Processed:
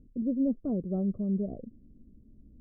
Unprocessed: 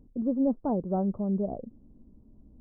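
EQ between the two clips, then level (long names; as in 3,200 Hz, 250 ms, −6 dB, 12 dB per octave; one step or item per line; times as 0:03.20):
moving average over 50 samples
0.0 dB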